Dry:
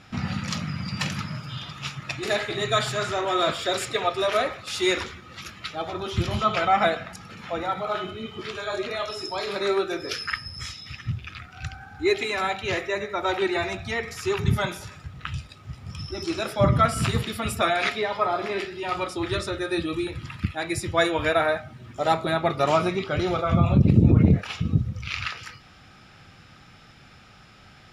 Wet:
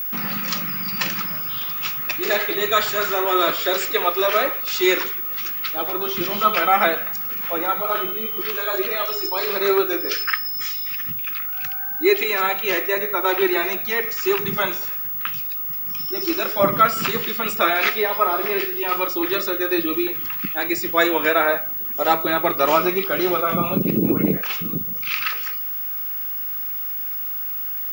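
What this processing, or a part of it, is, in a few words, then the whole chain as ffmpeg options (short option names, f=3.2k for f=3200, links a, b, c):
old television with a line whistle: -af "highpass=f=220:w=0.5412,highpass=f=220:w=1.3066,equalizer=f=240:t=q:w=4:g=-6,equalizer=f=700:t=q:w=4:g=-6,equalizer=f=3.7k:t=q:w=4:g=-4,lowpass=f=7.1k:w=0.5412,lowpass=f=7.1k:w=1.3066,aeval=exprs='val(0)+0.0316*sin(2*PI*15625*n/s)':c=same,volume=6dB"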